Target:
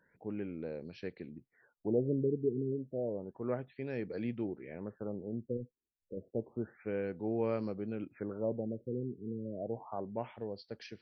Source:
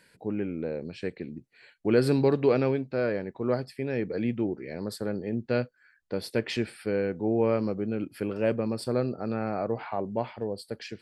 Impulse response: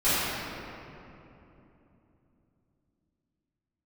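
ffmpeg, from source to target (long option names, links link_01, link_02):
-filter_complex "[0:a]asettb=1/sr,asplit=3[link_01][link_02][link_03];[link_01]atrim=end=5.574[link_04];[link_02]atrim=start=5.57:end=6.17,asetpts=PTS-STARTPTS,afade=type=in:duration=0.004:curve=qsin,afade=type=out:start_time=0.596:duration=0.004:curve=qsin,volume=27dB,asoftclip=hard,volume=-27dB[link_05];[link_03]atrim=start=6.166[link_06];[link_04][link_05]acrossfade=duration=0.004:curve1=hsin:curve2=qsin[link_07];[link_07][link_06]acrossfade=duration=0.004:curve1=qsin:curve2=hsin,afftfilt=real='re*lt(b*sr/1024,460*pow(6400/460,0.5+0.5*sin(2*PI*0.3*pts/sr)))':imag='im*lt(b*sr/1024,460*pow(6400/460,0.5+0.5*sin(2*PI*0.3*pts/sr)))':win_size=1024:overlap=0.75,volume=-8.5dB"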